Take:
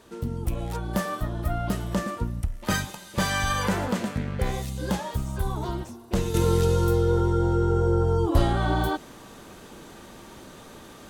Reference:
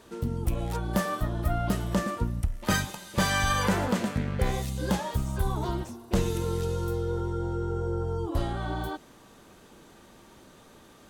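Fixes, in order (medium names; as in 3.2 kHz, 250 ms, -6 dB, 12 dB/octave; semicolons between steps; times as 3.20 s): gain correction -8 dB, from 6.34 s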